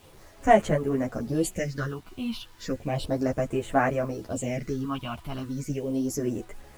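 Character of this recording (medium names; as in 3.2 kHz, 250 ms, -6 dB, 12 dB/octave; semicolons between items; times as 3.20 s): phasing stages 6, 0.34 Hz, lowest notch 470–5000 Hz; a quantiser's noise floor 10-bit, dither none; a shimmering, thickened sound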